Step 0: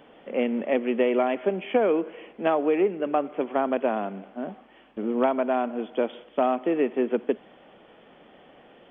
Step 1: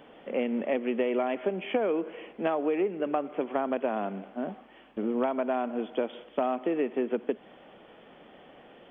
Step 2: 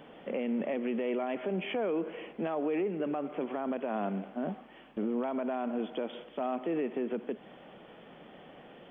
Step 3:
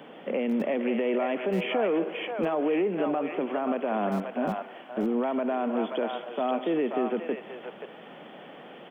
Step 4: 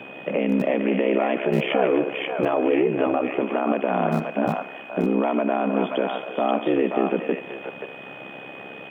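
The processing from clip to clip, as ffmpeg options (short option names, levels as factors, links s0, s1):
-af "acompressor=threshold=0.0501:ratio=2.5"
-af "equalizer=f=160:t=o:w=0.78:g=5.5,alimiter=level_in=1.06:limit=0.0631:level=0:latency=1:release=26,volume=0.944"
-filter_complex "[0:a]acrossover=split=130|490[s0][s1][s2];[s0]acrusher=bits=7:mix=0:aa=0.000001[s3];[s2]aecho=1:1:532:0.708[s4];[s3][s1][s4]amix=inputs=3:normalize=0,volume=1.88"
-af "aeval=exprs='val(0)*sin(2*PI*33*n/s)':c=same,aeval=exprs='val(0)+0.00355*sin(2*PI*2500*n/s)':c=same,bandreject=f=257.1:t=h:w=4,bandreject=f=514.2:t=h:w=4,bandreject=f=771.3:t=h:w=4,bandreject=f=1028.4:t=h:w=4,bandreject=f=1285.5:t=h:w=4,bandreject=f=1542.6:t=h:w=4,bandreject=f=1799.7:t=h:w=4,bandreject=f=2056.8:t=h:w=4,bandreject=f=2313.9:t=h:w=4,bandreject=f=2571:t=h:w=4,bandreject=f=2828.1:t=h:w=4,bandreject=f=3085.2:t=h:w=4,bandreject=f=3342.3:t=h:w=4,bandreject=f=3599.4:t=h:w=4,bandreject=f=3856.5:t=h:w=4,bandreject=f=4113.6:t=h:w=4,bandreject=f=4370.7:t=h:w=4,bandreject=f=4627.8:t=h:w=4,bandreject=f=4884.9:t=h:w=4,bandreject=f=5142:t=h:w=4,bandreject=f=5399.1:t=h:w=4,bandreject=f=5656.2:t=h:w=4,bandreject=f=5913.3:t=h:w=4,bandreject=f=6170.4:t=h:w=4,bandreject=f=6427.5:t=h:w=4,bandreject=f=6684.6:t=h:w=4,bandreject=f=6941.7:t=h:w=4,bandreject=f=7198.8:t=h:w=4,bandreject=f=7455.9:t=h:w=4,volume=2.66"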